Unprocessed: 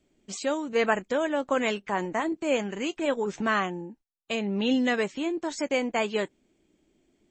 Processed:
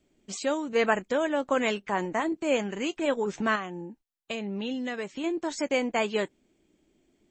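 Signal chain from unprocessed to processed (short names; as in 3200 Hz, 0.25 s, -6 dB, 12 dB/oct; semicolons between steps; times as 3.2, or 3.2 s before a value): 3.55–5.24 compressor 4:1, threshold -31 dBFS, peak gain reduction 9 dB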